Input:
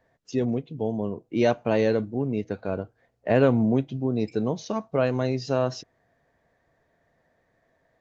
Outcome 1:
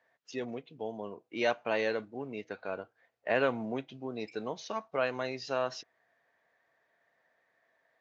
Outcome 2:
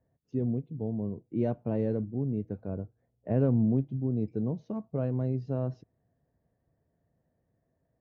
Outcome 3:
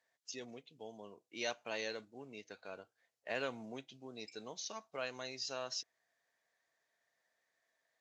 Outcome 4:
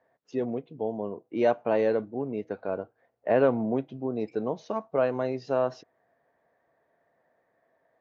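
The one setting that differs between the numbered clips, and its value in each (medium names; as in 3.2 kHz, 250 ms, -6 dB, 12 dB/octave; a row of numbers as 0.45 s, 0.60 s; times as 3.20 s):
band-pass filter, frequency: 2.1 kHz, 100 Hz, 7.5 kHz, 770 Hz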